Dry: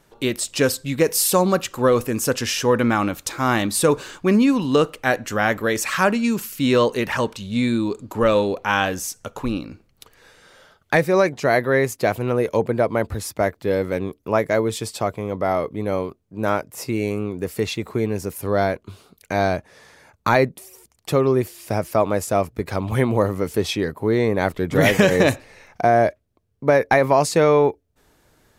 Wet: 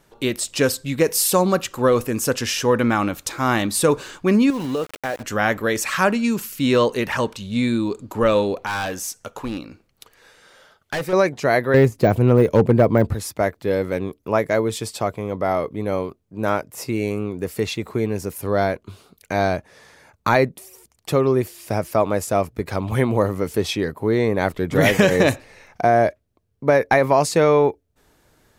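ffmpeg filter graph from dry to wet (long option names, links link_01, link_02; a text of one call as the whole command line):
ffmpeg -i in.wav -filter_complex "[0:a]asettb=1/sr,asplit=3[link_01][link_02][link_03];[link_01]atrim=end=4.504[link_04];[link_02]atrim=start=4.5:end=5.23,asetpts=PTS-STARTPTS,afade=type=in:duration=0.004:curve=qsin,afade=type=out:start_time=0.726:duration=0.004:curve=qsin,equalizer=frequency=580:width=0.94:gain=5.5,acompressor=threshold=-22dB:ratio=4:attack=3.2:release=140:knee=1:detection=peak,aeval=exprs='val(0)*gte(abs(val(0)),0.0224)':channel_layout=same[link_05];[link_03]atrim=start=5.226[link_06];[link_04][link_05]acrossfade=duration=0.004:curve1=hsin:curve2=qsin[link_07];[link_07][link_06]acrossfade=duration=0.004:curve1=qsin:curve2=hsin,asettb=1/sr,asplit=3[link_08][link_09][link_10];[link_08]atrim=end=8.664[link_11];[link_09]atrim=start=8.66:end=11.13,asetpts=PTS-STARTPTS,afade=type=in:duration=0.004:curve=qsin,afade=type=out:start_time=2.466:duration=0.004:curve=qsin,lowshelf=frequency=250:gain=-6.5,asoftclip=type=hard:threshold=-21.5dB[link_12];[link_10]atrim=start=11.126[link_13];[link_11][link_12]acrossfade=duration=0.004:curve1=hsin:curve2=qsin[link_14];[link_14][link_13]acrossfade=duration=0.004:curve1=qsin:curve2=hsin,asettb=1/sr,asplit=3[link_15][link_16][link_17];[link_15]atrim=end=11.744[link_18];[link_16]atrim=start=11.74:end=13.13,asetpts=PTS-STARTPTS,afade=type=in:duration=0.004:curve=qsin,afade=type=out:start_time=1.386:duration=0.004:curve=qsin,deesser=0.8,lowshelf=frequency=400:gain=11.5,asoftclip=type=hard:threshold=-6.5dB[link_19];[link_17]atrim=start=13.126[link_20];[link_18][link_19]acrossfade=duration=0.004:curve1=hsin:curve2=qsin[link_21];[link_21][link_20]acrossfade=duration=0.004:curve1=qsin:curve2=hsin" out.wav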